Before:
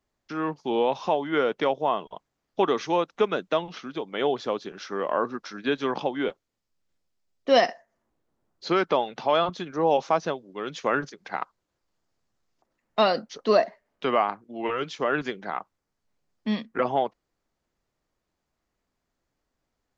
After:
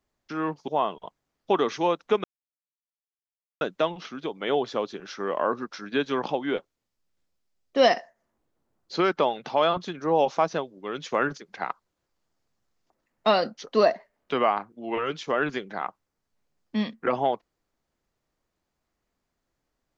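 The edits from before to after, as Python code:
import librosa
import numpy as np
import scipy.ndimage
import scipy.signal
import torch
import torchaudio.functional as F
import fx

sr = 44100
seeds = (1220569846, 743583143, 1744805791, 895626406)

y = fx.edit(x, sr, fx.cut(start_s=0.68, length_s=1.09),
    fx.insert_silence(at_s=3.33, length_s=1.37), tone=tone)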